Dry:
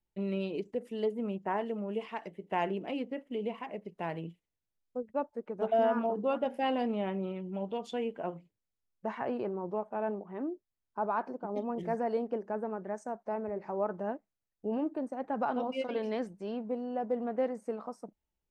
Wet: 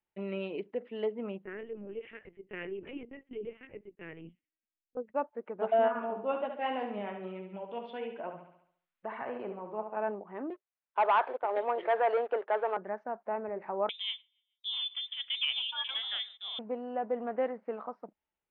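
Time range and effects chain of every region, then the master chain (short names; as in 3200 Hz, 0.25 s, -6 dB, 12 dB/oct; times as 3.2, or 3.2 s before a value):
1.45–4.97 Butterworth band-stop 870 Hz, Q 0.74 + high shelf 3000 Hz -10.5 dB + LPC vocoder at 8 kHz pitch kept
5.88–9.97 flange 1.2 Hz, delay 0.2 ms, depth 7.3 ms, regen +58% + flutter echo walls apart 11.9 m, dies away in 0.59 s + mismatched tape noise reduction encoder only
10.5–12.77 HPF 430 Hz 24 dB/oct + sample leveller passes 2
13.89–16.59 feedback echo 0.143 s, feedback 50%, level -23 dB + gate -53 dBFS, range -13 dB + inverted band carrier 3800 Hz
whole clip: Bessel low-pass 1700 Hz, order 8; tilt +4 dB/oct; gain +4 dB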